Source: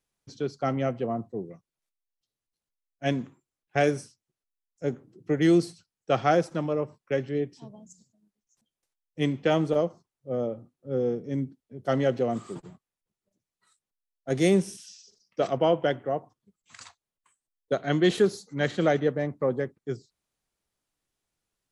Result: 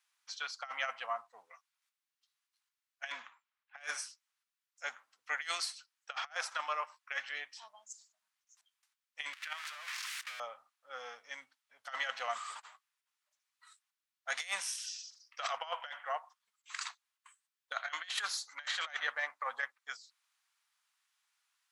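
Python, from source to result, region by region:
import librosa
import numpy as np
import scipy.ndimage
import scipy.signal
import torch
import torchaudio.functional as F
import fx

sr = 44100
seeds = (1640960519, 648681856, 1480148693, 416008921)

y = fx.chain(x, sr, fx.env_lowpass(base_hz=2800.0, full_db=-19.0),
    fx.low_shelf(hz=460.0, db=5.0), at=(3.12, 3.99))
y = fx.chain(y, sr, fx.crossing_spikes(level_db=-19.5),
    fx.bandpass_q(hz=1900.0, q=1.5),
    fx.level_steps(step_db=16), at=(9.33, 10.4))
y = scipy.signal.sosfilt(scipy.signal.cheby2(4, 50, 400.0, 'highpass', fs=sr, output='sos'), y)
y = fx.high_shelf(y, sr, hz=6400.0, db=-8.5)
y = fx.over_compress(y, sr, threshold_db=-41.0, ratio=-0.5)
y = y * 10.0 ** (4.5 / 20.0)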